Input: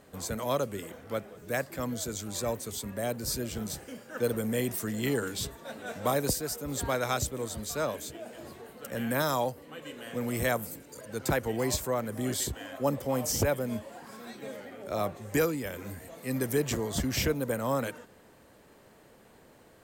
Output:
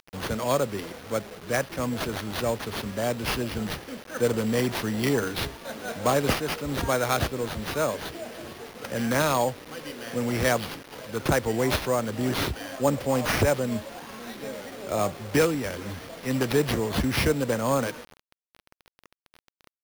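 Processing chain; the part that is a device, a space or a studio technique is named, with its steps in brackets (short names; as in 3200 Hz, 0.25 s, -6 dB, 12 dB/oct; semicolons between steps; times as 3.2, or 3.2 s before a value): early 8-bit sampler (sample-rate reducer 7700 Hz, jitter 0%; bit-crush 8-bit); gain +5 dB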